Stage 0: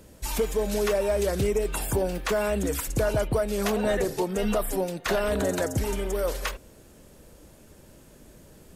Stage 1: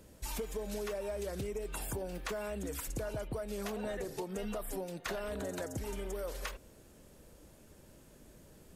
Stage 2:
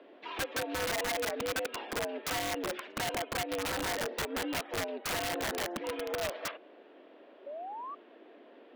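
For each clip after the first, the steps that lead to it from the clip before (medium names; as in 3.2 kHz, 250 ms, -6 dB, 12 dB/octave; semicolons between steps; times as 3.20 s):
compression, threshold -29 dBFS, peak gain reduction 8.5 dB; trim -6.5 dB
mistuned SSB +83 Hz 200–3300 Hz; integer overflow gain 34 dB; painted sound rise, 7.46–7.95 s, 550–1200 Hz -47 dBFS; trim +6 dB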